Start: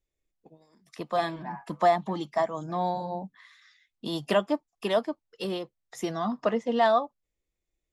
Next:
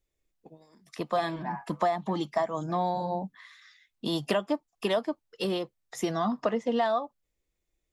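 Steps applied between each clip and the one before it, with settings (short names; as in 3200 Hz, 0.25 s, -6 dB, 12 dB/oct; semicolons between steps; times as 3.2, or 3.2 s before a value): compressor 6:1, threshold -26 dBFS, peak gain reduction 9.5 dB; gain +3 dB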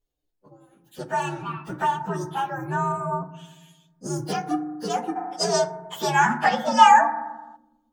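inharmonic rescaling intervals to 124%; FDN reverb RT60 1.2 s, low-frequency decay 1.35×, high-frequency decay 0.25×, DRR 8.5 dB; spectral gain 5.16–7.56, 620–8600 Hz +12 dB; gain +3.5 dB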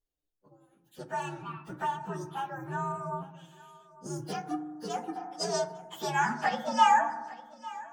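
thinning echo 0.851 s, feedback 29%, high-pass 230 Hz, level -19 dB; gain -8.5 dB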